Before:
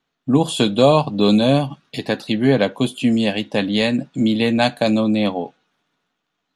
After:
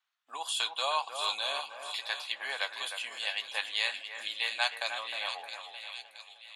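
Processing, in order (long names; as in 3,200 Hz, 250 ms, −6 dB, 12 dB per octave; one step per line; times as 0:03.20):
high-pass filter 960 Hz 24 dB per octave
on a send: echo with a time of its own for lows and highs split 2,200 Hz, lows 308 ms, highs 670 ms, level −7.5 dB
on the sum: level −7 dB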